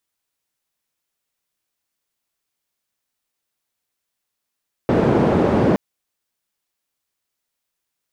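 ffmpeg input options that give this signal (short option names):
-f lavfi -i "anoisesrc=c=white:d=0.87:r=44100:seed=1,highpass=f=110,lowpass=f=420,volume=6.8dB"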